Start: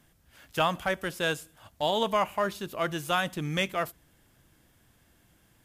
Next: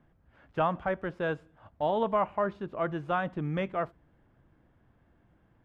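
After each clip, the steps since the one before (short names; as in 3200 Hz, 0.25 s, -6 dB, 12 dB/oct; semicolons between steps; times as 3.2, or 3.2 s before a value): LPF 1300 Hz 12 dB/oct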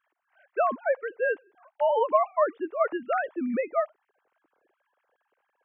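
sine-wave speech; gain +4 dB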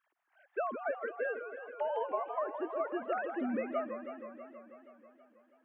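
compressor, threshold -28 dBFS, peak gain reduction 11.5 dB; warbling echo 0.161 s, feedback 74%, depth 212 cents, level -9 dB; gain -4 dB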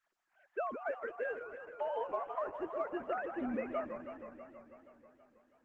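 gain -2.5 dB; Opus 12 kbps 48000 Hz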